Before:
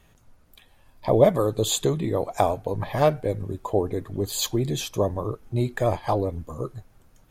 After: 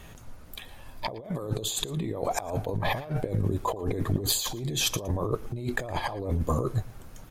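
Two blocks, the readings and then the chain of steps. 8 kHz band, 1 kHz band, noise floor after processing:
−0.5 dB, −5.5 dB, −47 dBFS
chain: compressor whose output falls as the input rises −34 dBFS, ratio −1
single-tap delay 114 ms −20.5 dB
level +3 dB

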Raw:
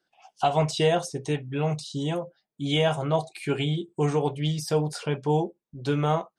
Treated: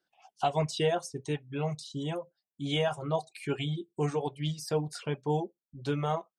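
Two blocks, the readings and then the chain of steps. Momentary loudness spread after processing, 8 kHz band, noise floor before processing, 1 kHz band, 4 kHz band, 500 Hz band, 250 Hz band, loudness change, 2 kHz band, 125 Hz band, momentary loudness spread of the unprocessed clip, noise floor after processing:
7 LU, −5.5 dB, −84 dBFS, −5.5 dB, −5.5 dB, −5.5 dB, −6.5 dB, −6.0 dB, −5.5 dB, −6.5 dB, 7 LU, below −85 dBFS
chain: reverb reduction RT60 0.88 s
level −5 dB

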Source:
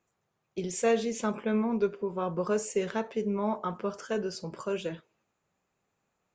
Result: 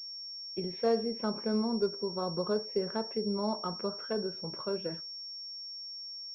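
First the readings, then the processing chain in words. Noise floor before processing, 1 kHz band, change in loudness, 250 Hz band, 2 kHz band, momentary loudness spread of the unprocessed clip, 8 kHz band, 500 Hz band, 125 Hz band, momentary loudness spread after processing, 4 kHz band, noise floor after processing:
−80 dBFS, −3.5 dB, −3.0 dB, −2.5 dB, −8.5 dB, 10 LU, below −20 dB, −2.5 dB, −2.5 dB, 10 LU, +10.0 dB, −43 dBFS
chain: treble cut that deepens with the level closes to 1,300 Hz, closed at −27.5 dBFS
switching amplifier with a slow clock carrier 5,500 Hz
level −2.5 dB

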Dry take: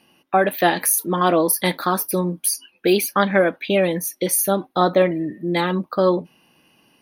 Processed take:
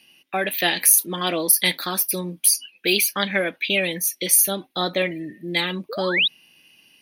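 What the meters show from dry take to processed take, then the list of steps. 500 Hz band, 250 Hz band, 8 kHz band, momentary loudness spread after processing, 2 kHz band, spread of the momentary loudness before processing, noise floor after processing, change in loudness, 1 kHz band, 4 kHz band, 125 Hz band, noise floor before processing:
−8.0 dB, −7.5 dB, +4.0 dB, 10 LU, +2.0 dB, 5 LU, −62 dBFS, −0.5 dB, −8.5 dB, +7.0 dB, −7.0 dB, −62 dBFS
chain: sound drawn into the spectrogram rise, 0:05.89–0:06.28, 400–4,000 Hz −24 dBFS
high shelf with overshoot 1,700 Hz +11 dB, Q 1.5
level −7 dB

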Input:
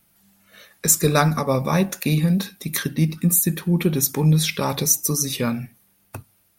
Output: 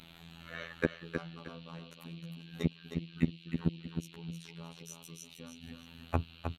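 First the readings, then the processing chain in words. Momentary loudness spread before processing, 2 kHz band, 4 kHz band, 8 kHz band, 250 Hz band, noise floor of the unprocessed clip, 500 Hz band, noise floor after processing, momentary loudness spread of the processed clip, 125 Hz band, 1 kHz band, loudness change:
7 LU, −14.0 dB, −19.5 dB, −33.5 dB, −16.0 dB, −62 dBFS, −17.0 dB, −56 dBFS, 14 LU, −18.0 dB, −19.5 dB, −19.5 dB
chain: adaptive Wiener filter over 9 samples
gate with flip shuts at −19 dBFS, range −37 dB
in parallel at −1 dB: downward compressor, threshold −60 dBFS, peak gain reduction 30.5 dB
on the sum: treble cut that deepens with the level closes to 850 Hz, closed at −35.5 dBFS
noise in a band 2,300–4,100 Hz −65 dBFS
phases set to zero 83.6 Hz
on a send: repeating echo 312 ms, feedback 28%, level −6.5 dB
on the sum: level +7.5 dB

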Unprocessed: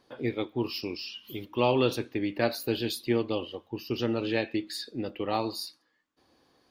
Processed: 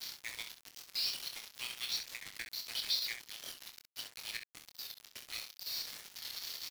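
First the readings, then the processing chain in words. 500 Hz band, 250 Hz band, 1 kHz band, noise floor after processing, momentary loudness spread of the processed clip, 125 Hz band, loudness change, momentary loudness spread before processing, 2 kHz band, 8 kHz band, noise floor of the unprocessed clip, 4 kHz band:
−34.0 dB, −36.5 dB, −22.5 dB, −67 dBFS, 12 LU, below −30 dB, −9.0 dB, 11 LU, −7.0 dB, +2.5 dB, −73 dBFS, 0.0 dB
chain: spike at every zero crossing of −24.5 dBFS
elliptic high-pass filter 2,100 Hz, stop band 80 dB
spectral tilt −1.5 dB per octave
notch filter 2,700 Hz, Q 8.2
volume swells 275 ms
Chebyshev low-pass with heavy ripple 5,800 Hz, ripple 6 dB
centre clipping without the shift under −43.5 dBFS
square-wave tremolo 5.3 Hz, depth 65%, duty 85%
on a send: ambience of single reflections 26 ms −7.5 dB, 66 ms −9 dB
on the sum: wow of a warped record 45 rpm, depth 100 cents
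level +6 dB

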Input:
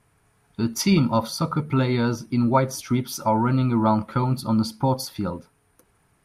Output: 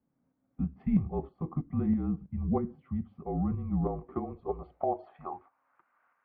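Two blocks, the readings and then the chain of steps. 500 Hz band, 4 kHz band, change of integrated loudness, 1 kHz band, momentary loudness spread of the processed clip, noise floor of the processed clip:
−10.0 dB, below −40 dB, −10.5 dB, −13.5 dB, 9 LU, −77 dBFS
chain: single-sideband voice off tune −160 Hz 150–2,900 Hz
band-pass filter sweep 200 Hz → 1,300 Hz, 0:03.66–0:05.83
shaped tremolo saw up 3.1 Hz, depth 45%
level +3.5 dB

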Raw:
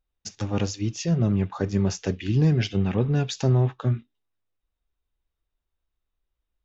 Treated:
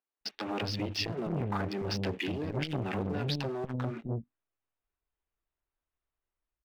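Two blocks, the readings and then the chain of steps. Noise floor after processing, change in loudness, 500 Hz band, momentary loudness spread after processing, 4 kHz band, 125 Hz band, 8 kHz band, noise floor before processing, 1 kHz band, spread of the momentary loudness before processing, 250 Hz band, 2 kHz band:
below −85 dBFS, −9.5 dB, −6.5 dB, 5 LU, −0.5 dB, −13.0 dB, can't be measured, −83 dBFS, −1.0 dB, 8 LU, −9.5 dB, −1.0 dB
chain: adaptive Wiener filter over 9 samples
elliptic low-pass filter 5,000 Hz
low-shelf EQ 120 Hz −12 dB
notch filter 510 Hz, Q 12
downward compressor 6 to 1, threshold −29 dBFS, peak gain reduction 9 dB
leveller curve on the samples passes 2
brickwall limiter −26 dBFS, peak gain reduction 7.5 dB
automatic gain control gain up to 4 dB
multiband delay without the direct sound highs, lows 210 ms, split 230 Hz
saturating transformer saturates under 580 Hz

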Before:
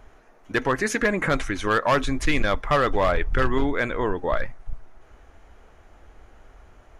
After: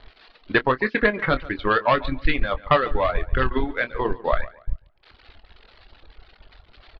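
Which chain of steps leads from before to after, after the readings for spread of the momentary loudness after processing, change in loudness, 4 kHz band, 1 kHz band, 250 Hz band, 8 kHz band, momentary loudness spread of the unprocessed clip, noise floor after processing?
7 LU, +1.0 dB, +0.5 dB, +1.5 dB, −1.0 dB, below −30 dB, 6 LU, −57 dBFS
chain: spike at every zero crossing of −29 dBFS
hum removal 61.48 Hz, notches 13
reverb reduction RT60 1.1 s
Butterworth low-pass 4,500 Hz 72 dB per octave
transient designer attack +6 dB, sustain −10 dB
double-tracking delay 24 ms −12 dB
on a send: tape delay 142 ms, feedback 33%, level −18 dB, low-pass 3,100 Hz

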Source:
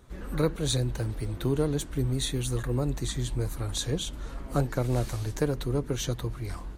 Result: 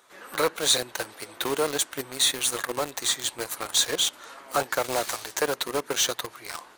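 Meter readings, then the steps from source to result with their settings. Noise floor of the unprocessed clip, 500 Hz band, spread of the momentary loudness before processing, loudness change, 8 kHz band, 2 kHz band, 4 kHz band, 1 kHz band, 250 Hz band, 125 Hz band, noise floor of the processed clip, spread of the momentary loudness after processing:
−41 dBFS, +2.5 dB, 5 LU, +4.0 dB, +11.0 dB, +11.0 dB, +11.0 dB, +9.5 dB, −6.5 dB, −19.0 dB, −52 dBFS, 12 LU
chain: high-pass filter 770 Hz 12 dB per octave
in parallel at −7 dB: log-companded quantiser 2 bits
on the sum: level +6 dB

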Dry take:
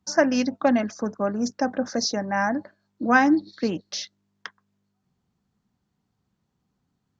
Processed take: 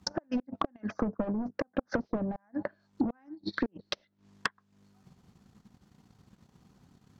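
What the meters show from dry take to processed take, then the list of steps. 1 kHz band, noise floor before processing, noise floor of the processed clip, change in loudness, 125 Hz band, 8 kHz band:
−14.0 dB, −77 dBFS, −73 dBFS, −11.0 dB, −3.5 dB, can't be measured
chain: gate with flip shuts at −13 dBFS, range −37 dB
in parallel at −9.5 dB: sine wavefolder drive 15 dB, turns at −12 dBFS
on the sum: downward compressor 4 to 1, threshold −35 dBFS, peak gain reduction 14.5 dB
treble cut that deepens with the level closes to 670 Hz, closed at −31 dBFS
transient designer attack +6 dB, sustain −11 dB
level +1.5 dB

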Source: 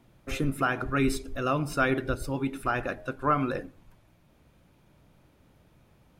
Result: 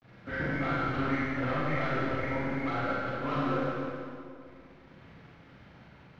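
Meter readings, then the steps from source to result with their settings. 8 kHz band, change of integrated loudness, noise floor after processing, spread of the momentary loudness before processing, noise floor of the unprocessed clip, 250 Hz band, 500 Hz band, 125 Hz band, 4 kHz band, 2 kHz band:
below −15 dB, −2.5 dB, −55 dBFS, 7 LU, −62 dBFS, −2.0 dB, −2.5 dB, −1.5 dB, −3.5 dB, −1.5 dB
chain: hearing-aid frequency compression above 1,300 Hz 4 to 1
downward expander −57 dBFS
high-pass filter 92 Hz 12 dB per octave
notch filter 390 Hz, Q 12
reverb reduction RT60 1.5 s
low-shelf EQ 150 Hz +5.5 dB
in parallel at 0 dB: downward compressor, threshold −34 dBFS, peak gain reduction 14 dB
on the sum: log-companded quantiser 4 bits
soft clipping −29 dBFS, distortion −6 dB
high-frequency loss of the air 270 metres
on a send: echo with a time of its own for lows and highs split 1,000 Hz, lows 259 ms, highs 170 ms, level −8 dB
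on the sum: four-comb reverb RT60 1.8 s, combs from 32 ms, DRR −6.5 dB
level −4 dB

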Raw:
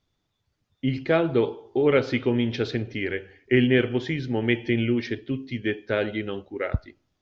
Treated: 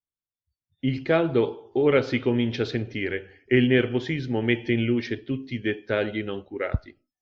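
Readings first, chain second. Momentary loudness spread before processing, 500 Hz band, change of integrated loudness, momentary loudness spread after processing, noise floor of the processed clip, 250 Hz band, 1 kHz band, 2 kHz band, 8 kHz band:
10 LU, 0.0 dB, 0.0 dB, 10 LU, below −85 dBFS, 0.0 dB, 0.0 dB, 0.0 dB, can't be measured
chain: noise reduction from a noise print of the clip's start 28 dB

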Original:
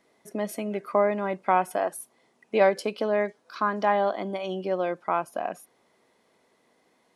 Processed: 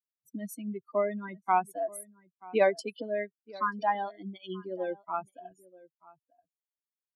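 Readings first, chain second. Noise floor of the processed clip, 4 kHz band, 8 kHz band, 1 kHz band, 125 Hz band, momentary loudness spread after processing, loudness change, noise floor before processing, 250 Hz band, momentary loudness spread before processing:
below −85 dBFS, −6.0 dB, −4.5 dB, −4.5 dB, can't be measured, 18 LU, −5.0 dB, −67 dBFS, −6.0 dB, 10 LU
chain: spectral dynamics exaggerated over time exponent 3
slap from a distant wall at 160 metres, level −21 dB

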